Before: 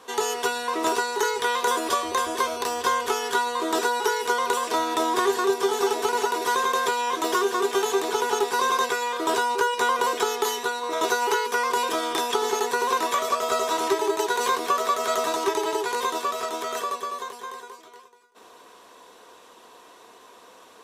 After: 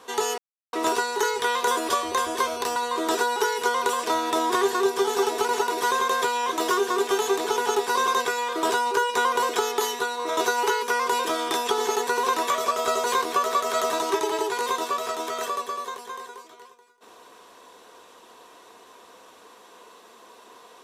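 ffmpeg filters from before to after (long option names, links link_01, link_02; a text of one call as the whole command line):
ffmpeg -i in.wav -filter_complex "[0:a]asplit=5[link_01][link_02][link_03][link_04][link_05];[link_01]atrim=end=0.38,asetpts=PTS-STARTPTS,afade=type=out:start_time=0.376:duration=0.004:curve=hsin[link_06];[link_02]atrim=start=0.38:end=0.73,asetpts=PTS-STARTPTS,volume=0[link_07];[link_03]atrim=start=0.73:end=2.762,asetpts=PTS-STARTPTS,afade=type=in:duration=0.004:curve=hsin[link_08];[link_04]atrim=start=3.398:end=13.682[link_09];[link_05]atrim=start=14.378[link_10];[link_06][link_07][link_08]concat=n=3:v=0:a=1[link_11];[link_11][link_09]acrossfade=duration=0.004:curve1=hsin:curve2=hsin[link_12];[link_12][link_10]acrossfade=duration=0.004:curve1=hsin:curve2=hsin" out.wav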